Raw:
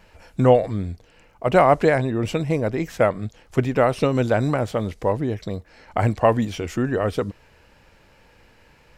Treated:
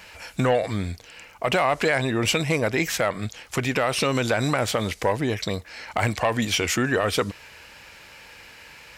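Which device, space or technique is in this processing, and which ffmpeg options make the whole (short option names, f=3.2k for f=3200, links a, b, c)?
mastering chain: -af "highpass=43,equalizer=f=2.3k:t=o:w=0.22:g=2.5,acompressor=threshold=-21dB:ratio=2,asoftclip=type=tanh:threshold=-12dB,tiltshelf=f=970:g=-7.5,asoftclip=type=hard:threshold=-11.5dB,alimiter=level_in=16dB:limit=-1dB:release=50:level=0:latency=1,volume=-9dB"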